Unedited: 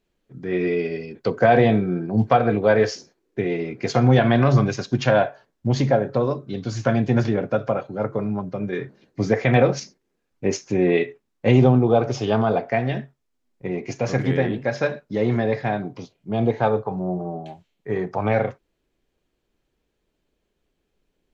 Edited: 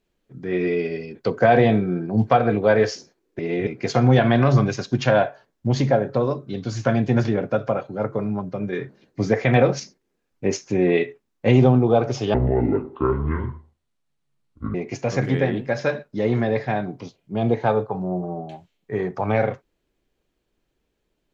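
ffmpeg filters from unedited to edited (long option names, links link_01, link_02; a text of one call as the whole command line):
ffmpeg -i in.wav -filter_complex "[0:a]asplit=5[link_01][link_02][link_03][link_04][link_05];[link_01]atrim=end=3.392[link_06];[link_02]atrim=start=3.388:end=3.672,asetpts=PTS-STARTPTS,areverse[link_07];[link_03]atrim=start=3.668:end=12.344[link_08];[link_04]atrim=start=12.34:end=13.71,asetpts=PTS-STARTPTS,asetrate=25137,aresample=44100[link_09];[link_05]atrim=start=13.706[link_10];[link_06][link_07]acrossfade=duration=0.004:curve1=hsin:curve2=hsin[link_11];[link_11][link_08]acrossfade=duration=0.004:curve1=hsin:curve2=hsin[link_12];[link_12][link_09]acrossfade=duration=0.004:curve1=hsin:curve2=hsin[link_13];[link_13][link_10]acrossfade=duration=0.004:curve1=hsin:curve2=hsin" out.wav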